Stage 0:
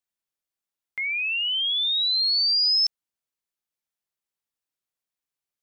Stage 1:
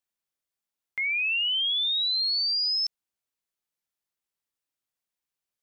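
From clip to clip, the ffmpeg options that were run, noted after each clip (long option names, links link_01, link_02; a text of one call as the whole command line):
ffmpeg -i in.wav -af "alimiter=limit=-23dB:level=0:latency=1" out.wav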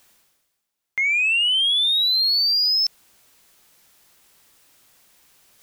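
ffmpeg -i in.wav -af "areverse,acompressor=mode=upward:threshold=-45dB:ratio=2.5,areverse,asoftclip=type=tanh:threshold=-21dB,volume=8dB" out.wav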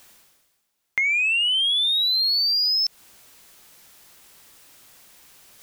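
ffmpeg -i in.wav -af "acompressor=threshold=-26dB:ratio=6,volume=5.5dB" out.wav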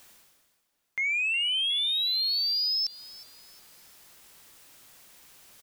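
ffmpeg -i in.wav -filter_complex "[0:a]alimiter=limit=-21.5dB:level=0:latency=1:release=21,asplit=2[link_01][link_02];[link_02]adelay=363,lowpass=frequency=4100:poles=1,volume=-16dB,asplit=2[link_03][link_04];[link_04]adelay=363,lowpass=frequency=4100:poles=1,volume=0.49,asplit=2[link_05][link_06];[link_06]adelay=363,lowpass=frequency=4100:poles=1,volume=0.49,asplit=2[link_07][link_08];[link_08]adelay=363,lowpass=frequency=4100:poles=1,volume=0.49[link_09];[link_01][link_03][link_05][link_07][link_09]amix=inputs=5:normalize=0,volume=-3dB" out.wav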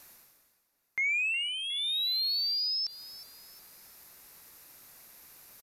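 ffmpeg -i in.wav -filter_complex "[0:a]acrossover=split=4900[link_01][link_02];[link_02]acompressor=threshold=-39dB:ratio=4:attack=1:release=60[link_03];[link_01][link_03]amix=inputs=2:normalize=0,aresample=32000,aresample=44100,equalizer=frequency=3150:width_type=o:width=0.33:gain=-9,equalizer=frequency=8000:width_type=o:width=0.33:gain=-4,equalizer=frequency=12500:width_type=o:width=0.33:gain=8" out.wav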